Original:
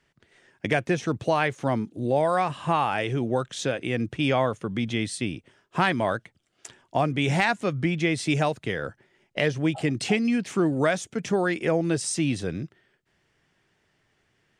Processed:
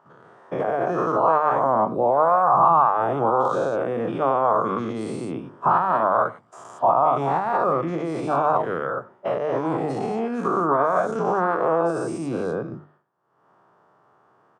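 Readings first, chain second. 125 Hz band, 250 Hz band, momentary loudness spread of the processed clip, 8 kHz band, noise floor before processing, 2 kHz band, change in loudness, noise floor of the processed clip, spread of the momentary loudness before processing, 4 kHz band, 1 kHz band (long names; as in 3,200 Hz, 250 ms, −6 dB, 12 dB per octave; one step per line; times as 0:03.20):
−5.0 dB, −2.0 dB, 10 LU, below −10 dB, −71 dBFS, −4.5 dB, +4.0 dB, −60 dBFS, 8 LU, below −10 dB, +10.0 dB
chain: every bin's largest magnitude spread in time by 240 ms
downward expander −51 dBFS
high-pass filter 120 Hz 24 dB per octave
downward compressor 2 to 1, threshold −22 dBFS, peak gain reduction 6.5 dB
mains-hum notches 50/100/150/200/250/300/350 Hz
far-end echo of a speakerphone 90 ms, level −20 dB
brickwall limiter −15.5 dBFS, peak gain reduction 8 dB
upward compression, threshold −42 dBFS
drawn EQ curve 270 Hz 0 dB, 1,200 Hz +15 dB, 2,000 Hz −15 dB
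gain on a spectral selection 0:02.42–0:02.64, 1,800–5,000 Hz −11 dB
level −2.5 dB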